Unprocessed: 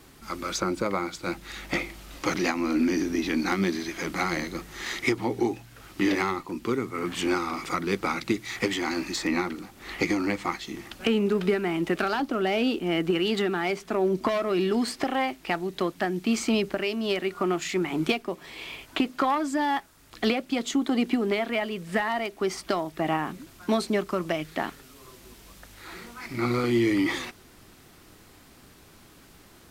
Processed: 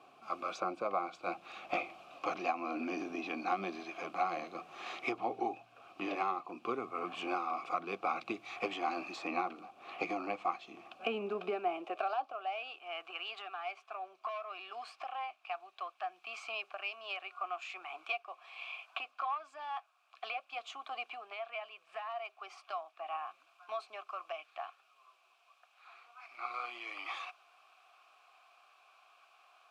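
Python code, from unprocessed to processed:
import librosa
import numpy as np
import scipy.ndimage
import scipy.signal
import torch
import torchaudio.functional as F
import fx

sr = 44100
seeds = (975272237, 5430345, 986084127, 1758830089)

y = fx.vowel_filter(x, sr, vowel='a')
y = fx.rider(y, sr, range_db=4, speed_s=0.5)
y = fx.filter_sweep_highpass(y, sr, from_hz=100.0, to_hz=1200.0, start_s=10.83, end_s=12.65, q=1.0)
y = y * librosa.db_to_amplitude(3.0)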